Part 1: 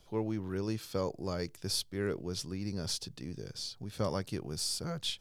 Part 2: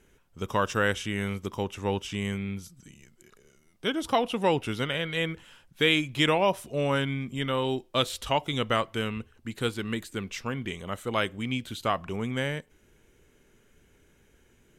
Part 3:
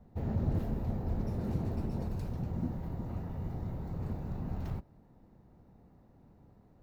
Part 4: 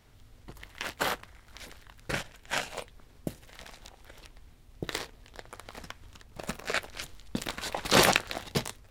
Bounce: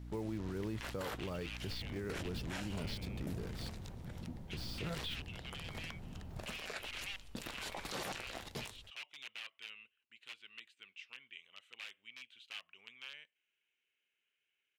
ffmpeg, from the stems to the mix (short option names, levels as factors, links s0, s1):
-filter_complex "[0:a]lowpass=f=3500:w=0.5412,lowpass=f=3500:w=1.3066,acrusher=bits=7:mix=0:aa=0.5,aeval=exprs='val(0)+0.00501*(sin(2*PI*60*n/s)+sin(2*PI*2*60*n/s)/2+sin(2*PI*3*60*n/s)/3+sin(2*PI*4*60*n/s)/4+sin(2*PI*5*60*n/s)/5)':c=same,volume=0.944,asplit=3[s0][s1][s2];[s0]atrim=end=3.69,asetpts=PTS-STARTPTS,afade=t=out:st=3.686:d=0.004:c=hsin[s3];[s1]atrim=start=3.69:end=4.53,asetpts=PTS-STARTPTS,volume=0[s4];[s2]atrim=start=4.53,asetpts=PTS-STARTPTS,afade=t=in:d=0.004:c=hsin[s5];[s3][s4][s5]concat=n=3:v=0:a=1[s6];[1:a]aeval=exprs='(mod(10.6*val(0)+1,2)-1)/10.6':c=same,bandpass=f=2700:t=q:w=4:csg=0,adelay=650,volume=0.335[s7];[2:a]adelay=1650,volume=0.266[s8];[3:a]volume=0.531[s9];[s6][s7][s8][s9]amix=inputs=4:normalize=0,alimiter=level_in=2.51:limit=0.0631:level=0:latency=1:release=27,volume=0.398"